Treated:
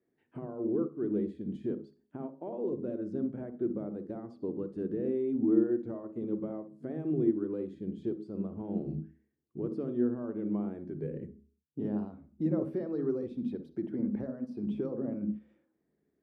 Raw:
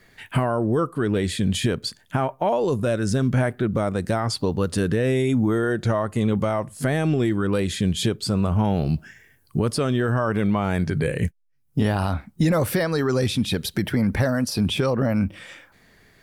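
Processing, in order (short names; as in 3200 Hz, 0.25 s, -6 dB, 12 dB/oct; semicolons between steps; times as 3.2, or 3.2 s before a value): band-pass 340 Hz, Q 2.8; on a send at -10.5 dB: reverb RT60 0.40 s, pre-delay 48 ms; on the sum: upward expander 1.5:1, over -38 dBFS; gain -3 dB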